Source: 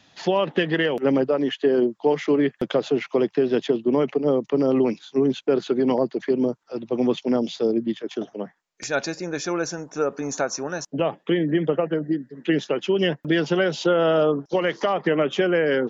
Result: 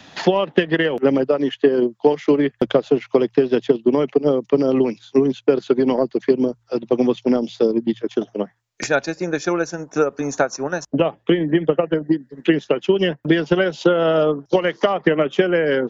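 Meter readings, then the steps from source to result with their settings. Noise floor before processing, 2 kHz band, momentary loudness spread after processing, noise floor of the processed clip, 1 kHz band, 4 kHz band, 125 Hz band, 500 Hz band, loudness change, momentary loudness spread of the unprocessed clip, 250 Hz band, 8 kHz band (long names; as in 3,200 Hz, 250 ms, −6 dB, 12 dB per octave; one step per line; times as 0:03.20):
−64 dBFS, +3.5 dB, 5 LU, −62 dBFS, +3.0 dB, +1.5 dB, +3.5 dB, +4.0 dB, +3.5 dB, 7 LU, +3.5 dB, can't be measured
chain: transient designer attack +6 dB, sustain −7 dB
hum removal 57.66 Hz, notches 2
multiband upward and downward compressor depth 40%
level +1.5 dB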